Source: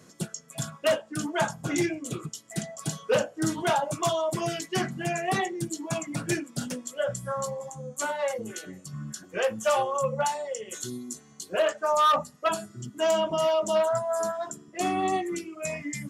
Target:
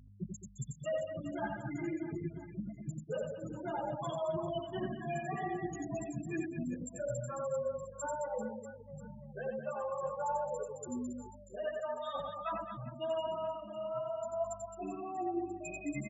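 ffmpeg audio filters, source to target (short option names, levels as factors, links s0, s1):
-filter_complex "[0:a]afftfilt=real='re*gte(hypot(re,im),0.112)':imag='im*gte(hypot(re,im),0.112)':win_size=1024:overlap=0.75,aeval=exprs='val(0)+0.00251*(sin(2*PI*50*n/s)+sin(2*PI*2*50*n/s)/2+sin(2*PI*3*50*n/s)/3+sin(2*PI*4*50*n/s)/4+sin(2*PI*5*50*n/s)/5)':c=same,areverse,acompressor=threshold=0.0224:ratio=8,areverse,aecho=1:1:90|216|392.4|639.4|985.1:0.631|0.398|0.251|0.158|0.1,asplit=2[s0][s1];[s1]adelay=9,afreqshift=0.91[s2];[s0][s2]amix=inputs=2:normalize=1"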